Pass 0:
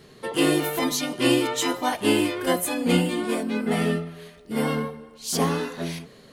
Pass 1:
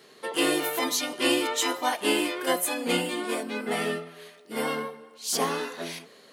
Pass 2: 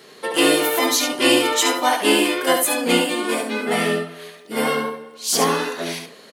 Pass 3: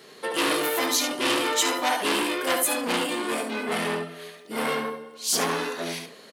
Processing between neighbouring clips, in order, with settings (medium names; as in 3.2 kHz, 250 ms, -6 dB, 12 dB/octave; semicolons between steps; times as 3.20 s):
high-pass 280 Hz 12 dB/octave; bass shelf 420 Hz -5.5 dB
delay 71 ms -6.5 dB; trim +7.5 dB
transformer saturation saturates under 3.2 kHz; trim -3 dB